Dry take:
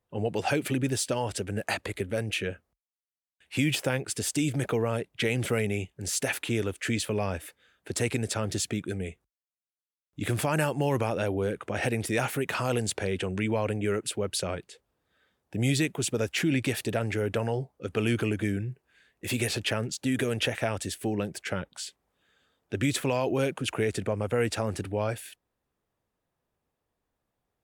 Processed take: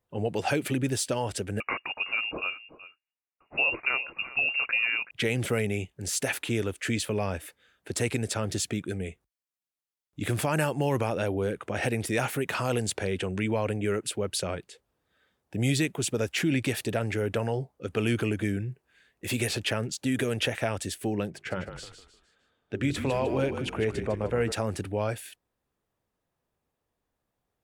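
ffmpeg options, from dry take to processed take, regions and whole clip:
-filter_complex "[0:a]asettb=1/sr,asplit=3[a][b][c];[a]atrim=end=1.604[d];[b]atrim=start=1.6:end=5.11,asetpts=PTS-STARTPTS,afade=t=in:d=0.004:c=qsin,afade=t=out:st=3.506:d=0.004:c=qsin,aecho=1:1:376:0.15,atrim=end_sample=154791,lowpass=f=2.5k:t=q:w=0.5098,lowpass=f=2.5k:t=q:w=0.6013,lowpass=f=2.5k:t=q:w=0.9,lowpass=f=2.5k:t=q:w=2.563,afreqshift=-2900[e];[c]atrim=start=5.106[f];[d][e]acrossfade=d=0.004:c1=hsin:c2=qsin[g];[g][f]acrossfade=d=0.004:c1=qsin:c2=hsin,asettb=1/sr,asplit=3[h][i][j];[h]atrim=end=21.304[k];[i]atrim=start=21.3:end=24.52,asetpts=PTS-STARTPTS,afade=t=in:d=0.004:c=qsin,afade=t=out:st=3.216:d=0.004:c=qsin,lowpass=f=2.6k:p=1,bandreject=f=50:t=h:w=6,bandreject=f=100:t=h:w=6,bandreject=f=150:t=h:w=6,bandreject=f=200:t=h:w=6,bandreject=f=250:t=h:w=6,bandreject=f=300:t=h:w=6,bandreject=f=350:t=h:w=6,bandreject=f=400:t=h:w=6,asplit=5[l][m][n][o][p];[m]adelay=153,afreqshift=-39,volume=-9dB[q];[n]adelay=306,afreqshift=-78,volume=-17.9dB[r];[o]adelay=459,afreqshift=-117,volume=-26.7dB[s];[p]adelay=612,afreqshift=-156,volume=-35.6dB[t];[l][q][r][s][t]amix=inputs=5:normalize=0,atrim=end_sample=142002[u];[j]atrim=start=24.516[v];[k][u]acrossfade=d=0.004:c1=hsin:c2=qsin[w];[w][v]acrossfade=d=0.004:c1=qsin:c2=hsin"

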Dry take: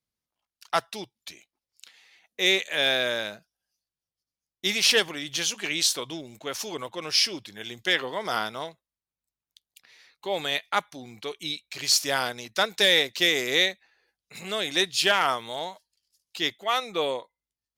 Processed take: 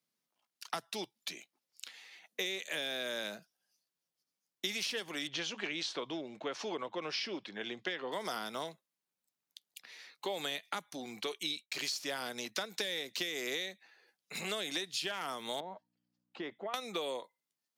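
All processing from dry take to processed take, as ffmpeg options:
-filter_complex "[0:a]asettb=1/sr,asplit=3[a][b][c];[a]atrim=end=5.274[d];[b]atrim=start=5.27:end=8.12,asetpts=PTS-STARTPTS,afade=t=in:d=0.004:c=qsin,afade=t=out:st=2.846:d=0.004:c=qsin,lowpass=4.9k,aemphasis=mode=reproduction:type=75kf[e];[c]atrim=start=8.116[f];[d][e]acrossfade=d=0.004:c1=hsin:c2=qsin[g];[g][f]acrossfade=d=0.004:c1=qsin:c2=hsin,asettb=1/sr,asplit=3[h][i][j];[h]atrim=end=11.264[k];[i]atrim=start=11.26:end=11.99,asetpts=PTS-STARTPTS,afade=t=in:d=0.004:c=qsin,afade=t=out:st=0.726:d=0.004:c=qsin,lowshelf=f=180:g=-9.5,asoftclip=type=hard:threshold=-12.5dB,agate=range=-33dB:threshold=-52dB:ratio=3:release=100:detection=peak[l];[j]atrim=start=11.986[m];[k][l]acrossfade=d=0.004:c1=hsin:c2=qsin[n];[n][m]acrossfade=d=0.004:c1=qsin:c2=hsin,asettb=1/sr,asplit=3[o][p][q];[o]atrim=end=15.604[r];[p]atrim=start=15.6:end=16.74,asetpts=PTS-STARTPTS,afade=t=in:d=0.004:c=qsin,afade=t=out:st=1.136:d=0.004:c=qsin,lowpass=1.2k,acompressor=threshold=-36dB:ratio=6:attack=3.2:release=140:knee=1:detection=peak,aeval=exprs='val(0)+0.000141*(sin(2*PI*60*n/s)+sin(2*PI*2*60*n/s)/2+sin(2*PI*3*60*n/s)/3+sin(2*PI*4*60*n/s)/4+sin(2*PI*5*60*n/s)/5)':c=same[s];[q]atrim=start=16.736[t];[r][s]acrossfade=d=0.004:c1=hsin:c2=qsin[u];[u][t]acrossfade=d=0.004:c1=qsin:c2=hsin,acompressor=threshold=-27dB:ratio=6,highpass=f=160:w=0.5412,highpass=f=160:w=1.3066,acrossover=split=350|5100[v][w][x];[v]acompressor=threshold=-50dB:ratio=4[y];[w]acompressor=threshold=-40dB:ratio=4[z];[x]acompressor=threshold=-48dB:ratio=4[aa];[y][z][aa]amix=inputs=3:normalize=0,volume=2.5dB"

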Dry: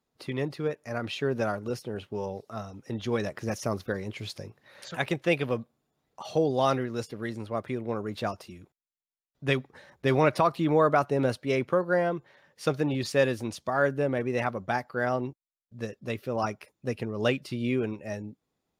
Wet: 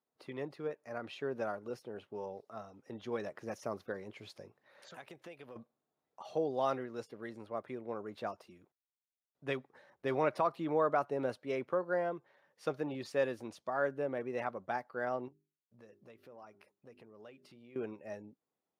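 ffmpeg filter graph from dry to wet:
-filter_complex "[0:a]asettb=1/sr,asplit=3[a][b][c];[a]atrim=end=4.884[d];[b]atrim=start=4.88:end=5.56,asetpts=PTS-STARTPTS,afade=t=in:d=0.004:c=qsin,afade=t=out:st=0.676:d=0.004:c=qsin,highshelf=f=4.5k:g=8,acompressor=threshold=-36dB:ratio=10:attack=3.2:release=140:knee=1:detection=peak[e];[c]atrim=start=5.556[f];[d][e]acrossfade=d=0.004:c1=hsin:c2=qsin[g];[g][f]acrossfade=d=0.004:c1=qsin:c2=hsin,asettb=1/sr,asplit=3[h][i][j];[h]atrim=end=15.284[k];[i]atrim=start=15.28:end=17.76,asetpts=PTS-STARTPTS,afade=t=in:d=0.004:c=qsin,afade=t=out:st=2.476:d=0.004:c=qsin,bandreject=f=50:t=h:w=6,bandreject=f=100:t=h:w=6,bandreject=f=150:t=h:w=6,bandreject=f=200:t=h:w=6,bandreject=f=250:t=h:w=6,bandreject=f=300:t=h:w=6,bandreject=f=350:t=h:w=6,bandreject=f=400:t=h:w=6,acompressor=threshold=-44dB:ratio=4:attack=3.2:release=140:knee=1:detection=peak[l];[j]atrim=start=17.756[m];[k][l]acrossfade=d=0.004:c1=hsin:c2=qsin[n];[n][m]acrossfade=d=0.004:c1=qsin:c2=hsin,highpass=f=890:p=1,tiltshelf=f=1.5k:g=8,volume=-8dB"

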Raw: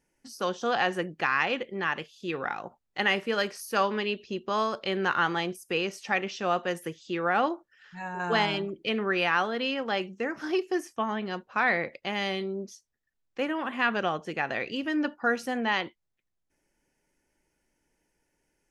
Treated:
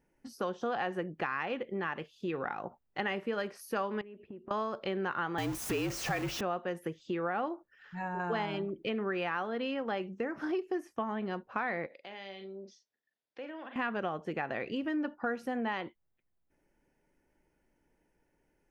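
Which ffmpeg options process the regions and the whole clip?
-filter_complex "[0:a]asettb=1/sr,asplit=3[a][b][c];[a]atrim=end=4.014[d];[b]atrim=start=4.01:end=4.51,asetpts=PTS-STARTPTS,afade=t=in:d=0.004:c=qsin,afade=t=out:st=0.496:d=0.004:c=qsin,agate=range=-33dB:threshold=-52dB:ratio=3:release=100:detection=peak,lowpass=f=2.2k:w=0.5412,lowpass=f=2.2k:w=1.3066,acompressor=threshold=-45dB:ratio=10:attack=3.2:release=140:knee=1:detection=peak[e];[c]atrim=start=4.506[f];[d][e]acrossfade=d=0.004:c1=hsin:c2=qsin[g];[g][f]acrossfade=d=0.004:c1=qsin:c2=hsin,asettb=1/sr,asplit=3[h][i][j];[h]atrim=end=5.384[k];[i]atrim=start=5.38:end=6.41,asetpts=PTS-STARTPTS,afade=t=in:d=0.004:c=qsin,afade=t=out:st=1.026:d=0.004:c=qsin,aeval=exprs='val(0)+0.5*0.0422*sgn(val(0))':c=same,equalizer=f=6.5k:w=1.2:g=8,afreqshift=-50[l];[j]atrim=start=6.406[m];[k][l]acrossfade=d=0.004:c1=hsin:c2=qsin[n];[n][m]acrossfade=d=0.004:c1=qsin:c2=hsin,asettb=1/sr,asplit=3[o][p][q];[o]atrim=end=11.864[r];[p]atrim=start=11.86:end=13.76,asetpts=PTS-STARTPTS,afade=t=in:d=0.004:c=qsin,afade=t=out:st=1.896:d=0.004:c=qsin,highpass=340,equalizer=f=360:t=q:w=4:g=-5,equalizer=f=840:t=q:w=4:g=-3,equalizer=f=1.2k:t=q:w=4:g=-8,equalizer=f=3.6k:t=q:w=4:g=6,equalizer=f=5k:t=q:w=4:g=5,lowpass=f=6.2k:w=0.5412,lowpass=f=6.2k:w=1.3066,asplit=2[s][t];[t]adelay=41,volume=-9.5dB[u];[s][u]amix=inputs=2:normalize=0,atrim=end_sample=83790,acompressor=threshold=-51dB:ratio=2:attack=3.2:release=140:knee=1:detection=peak[v];[q]atrim=start=13.756[w];[r][v]acrossfade=d=0.004:c1=hsin:c2=qsin[x];[x][w]acrossfade=d=0.004:c1=qsin:c2=hsin,equalizer=f=7k:w=0.38:g=-13.5,acompressor=threshold=-36dB:ratio=3,volume=3dB"

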